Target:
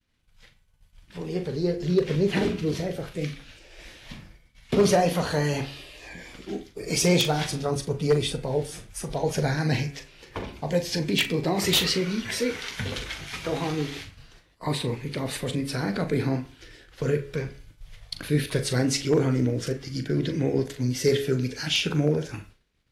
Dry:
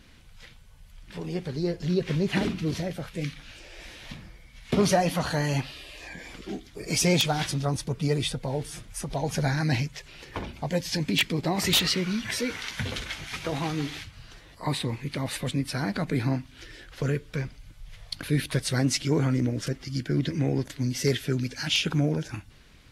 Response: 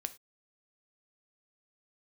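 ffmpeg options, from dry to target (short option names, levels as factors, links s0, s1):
-filter_complex "[0:a]bandreject=f=69.74:t=h:w=4,bandreject=f=139.48:t=h:w=4,bandreject=f=209.22:t=h:w=4,bandreject=f=278.96:t=h:w=4,bandreject=f=348.7:t=h:w=4,bandreject=f=418.44:t=h:w=4,bandreject=f=488.18:t=h:w=4,bandreject=f=557.92:t=h:w=4,bandreject=f=627.66:t=h:w=4,bandreject=f=697.4:t=h:w=4,bandreject=f=767.14:t=h:w=4,bandreject=f=836.88:t=h:w=4,bandreject=f=906.62:t=h:w=4,bandreject=f=976.36:t=h:w=4,bandreject=f=1046.1:t=h:w=4,bandreject=f=1115.84:t=h:w=4,bandreject=f=1185.58:t=h:w=4,bandreject=f=1255.32:t=h:w=4,bandreject=f=1325.06:t=h:w=4,bandreject=f=1394.8:t=h:w=4,bandreject=f=1464.54:t=h:w=4,bandreject=f=1534.28:t=h:w=4,bandreject=f=1604.02:t=h:w=4,bandreject=f=1673.76:t=h:w=4,bandreject=f=1743.5:t=h:w=4,bandreject=f=1813.24:t=h:w=4,bandreject=f=1882.98:t=h:w=4,bandreject=f=1952.72:t=h:w=4,bandreject=f=2022.46:t=h:w=4,bandreject=f=2092.2:t=h:w=4,bandreject=f=2161.94:t=h:w=4,bandreject=f=2231.68:t=h:w=4,bandreject=f=2301.42:t=h:w=4,bandreject=f=2371.16:t=h:w=4,bandreject=f=2440.9:t=h:w=4,bandreject=f=2510.64:t=h:w=4,bandreject=f=2580.38:t=h:w=4,bandreject=f=2650.12:t=h:w=4,bandreject=f=2719.86:t=h:w=4,agate=range=0.0224:threshold=0.00891:ratio=3:detection=peak,adynamicequalizer=threshold=0.00562:dfrequency=440:dqfactor=2.8:tfrequency=440:tqfactor=2.8:attack=5:release=100:ratio=0.375:range=4:mode=boostabove:tftype=bell,aeval=exprs='0.251*(abs(mod(val(0)/0.251+3,4)-2)-1)':c=same,asplit=2[s0][s1];[1:a]atrim=start_sample=2205,adelay=40[s2];[s1][s2]afir=irnorm=-1:irlink=0,volume=0.355[s3];[s0][s3]amix=inputs=2:normalize=0"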